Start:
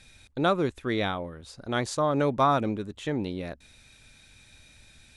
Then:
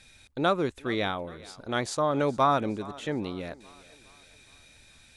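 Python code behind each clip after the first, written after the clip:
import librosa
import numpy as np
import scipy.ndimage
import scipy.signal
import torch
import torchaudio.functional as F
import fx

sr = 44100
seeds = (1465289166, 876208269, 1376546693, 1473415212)

y = fx.low_shelf(x, sr, hz=230.0, db=-4.5)
y = fx.echo_thinned(y, sr, ms=415, feedback_pct=51, hz=250.0, wet_db=-20)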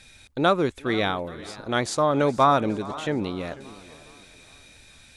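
y = fx.echo_warbled(x, sr, ms=495, feedback_pct=30, rate_hz=2.8, cents=180, wet_db=-19.0)
y = y * 10.0 ** (4.5 / 20.0)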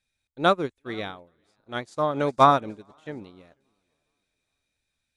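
y = fx.upward_expand(x, sr, threshold_db=-37.0, expansion=2.5)
y = y * 10.0 ** (3.5 / 20.0)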